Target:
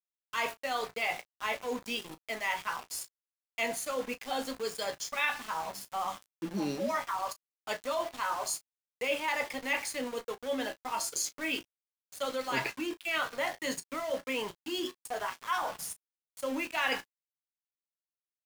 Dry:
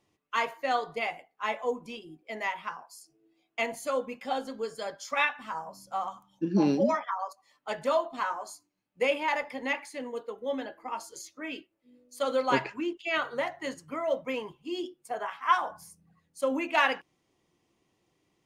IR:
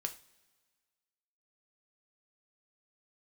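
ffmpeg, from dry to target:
-af "areverse,acompressor=threshold=-37dB:ratio=4,areverse,highshelf=frequency=2100:gain=9,aeval=exprs='val(0)*gte(abs(val(0)),0.00668)':channel_layout=same,aecho=1:1:16|34:0.237|0.158,volume=3.5dB"

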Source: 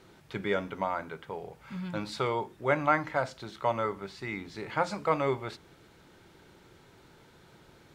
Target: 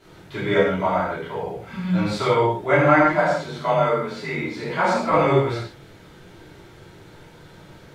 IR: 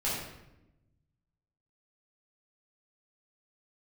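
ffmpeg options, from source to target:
-filter_complex "[0:a]asettb=1/sr,asplit=3[link_01][link_02][link_03];[link_01]atrim=end=3.024[link_04];[link_02]atrim=start=3.02:end=5.11,asetpts=PTS-STARTPTS,afade=type=in:duration=0.004:curve=qsin,afade=type=out:start_time=2.086:duration=0.004:curve=qsin,afreqshift=33[link_05];[link_03]atrim=start=5.106[link_06];[link_04][link_05]acrossfade=duration=0.004:curve1=hsin:curve2=qsin[link_07];[link_07][link_06]acrossfade=duration=0.004:curve1=qsin:curve2=hsin[link_08];[1:a]atrim=start_sample=2205,atrim=end_sample=6174,asetrate=32634,aresample=44100[link_09];[link_08][link_09]afir=irnorm=-1:irlink=0,volume=1dB"

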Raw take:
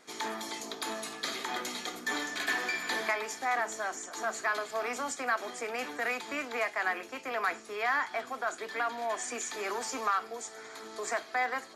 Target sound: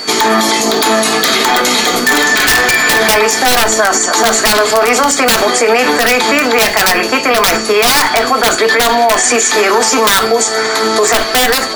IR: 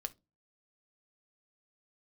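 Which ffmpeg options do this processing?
-filter_complex "[0:a]aeval=exprs='val(0)+0.00282*sin(2*PI*4500*n/s)':channel_layout=same,acontrast=73,aeval=exprs='(mod(7.5*val(0)+1,2)-1)/7.5':channel_layout=same[link_01];[1:a]atrim=start_sample=2205[link_02];[link_01][link_02]afir=irnorm=-1:irlink=0,alimiter=level_in=27.5dB:limit=-1dB:release=50:level=0:latency=1,volume=-1dB"

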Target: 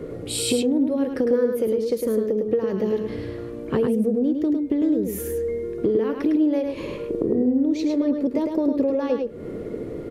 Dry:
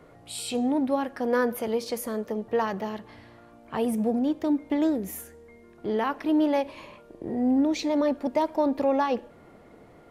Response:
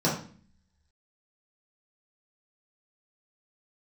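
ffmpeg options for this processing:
-filter_complex "[0:a]lowshelf=frequency=590:width_type=q:width=3:gain=8.5,acompressor=threshold=-28dB:ratio=12,asplit=2[link_01][link_02];[link_02]aecho=0:1:105:0.562[link_03];[link_01][link_03]amix=inputs=2:normalize=0,volume=8.5dB"

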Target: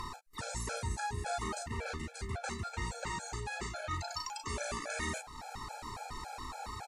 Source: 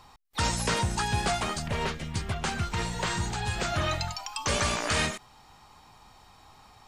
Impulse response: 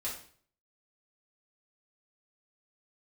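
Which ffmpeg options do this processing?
-filter_complex "[0:a]aecho=1:1:36|48:0.596|0.237,asplit=2[link_01][link_02];[link_02]acompressor=mode=upward:threshold=-28dB:ratio=2.5,volume=1.5dB[link_03];[link_01][link_03]amix=inputs=2:normalize=0,lowpass=12000,equalizer=frequency=5200:width=6.2:gain=-5,areverse,acompressor=threshold=-31dB:ratio=5,areverse,equalizer=frequency=100:width_type=o:width=0.33:gain=-4,equalizer=frequency=160:width_type=o:width=0.33:gain=-10,equalizer=frequency=3150:width_type=o:width=0.33:gain=-12,afftfilt=real='re*gt(sin(2*PI*3.6*pts/sr)*(1-2*mod(floor(b*sr/1024/440),2)),0)':imag='im*gt(sin(2*PI*3.6*pts/sr)*(1-2*mod(floor(b*sr/1024/440),2)),0)':win_size=1024:overlap=0.75,volume=-1.5dB"

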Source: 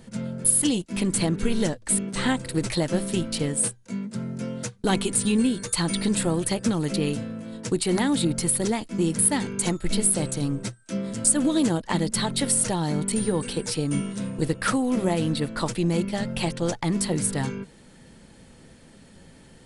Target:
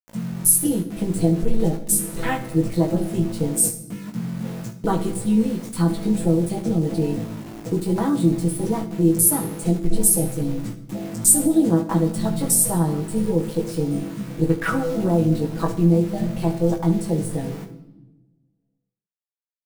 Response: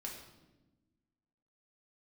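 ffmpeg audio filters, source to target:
-filter_complex "[0:a]afwtdn=0.0447,aecho=1:1:6.1:0.92,aeval=exprs='val(0)*gte(abs(val(0)),0.0158)':channel_layout=same,aecho=1:1:18|70:0.596|0.188,asplit=2[link_01][link_02];[1:a]atrim=start_sample=2205,highshelf=frequency=5400:gain=11.5[link_03];[link_02][link_03]afir=irnorm=-1:irlink=0,volume=-4dB[link_04];[link_01][link_04]amix=inputs=2:normalize=0,volume=-3.5dB"

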